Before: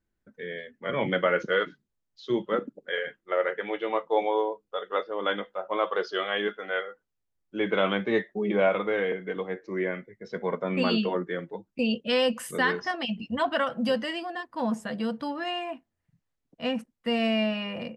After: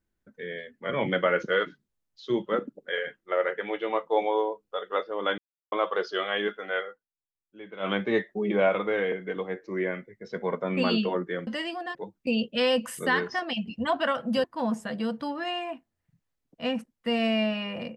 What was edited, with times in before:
0:05.38–0:05.72: silence
0:06.88–0:07.91: duck −16.5 dB, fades 0.12 s
0:13.96–0:14.44: move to 0:11.47

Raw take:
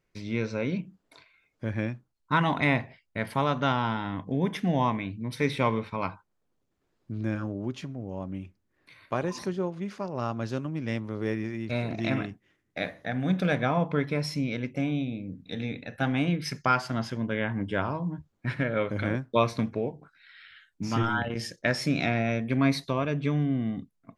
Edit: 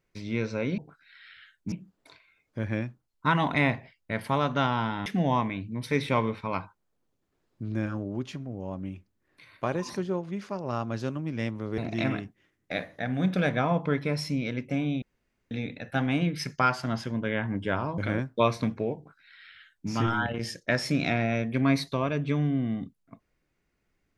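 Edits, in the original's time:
0:04.12–0:04.55: remove
0:11.27–0:11.84: remove
0:15.08–0:15.57: fill with room tone
0:18.04–0:18.94: remove
0:19.92–0:20.86: duplicate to 0:00.78

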